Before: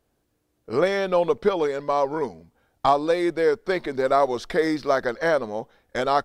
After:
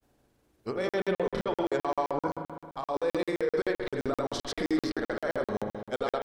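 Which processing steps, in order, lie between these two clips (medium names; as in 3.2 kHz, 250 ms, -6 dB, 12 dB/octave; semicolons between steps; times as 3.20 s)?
compressor with a negative ratio -25 dBFS, ratio -1; peak limiter -20.5 dBFS, peak gain reduction 8.5 dB; granulator, pitch spread up and down by 0 st; spring tank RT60 1.7 s, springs 38 ms, chirp 75 ms, DRR 3.5 dB; crackling interface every 0.13 s, samples 2048, zero, from 0.89 s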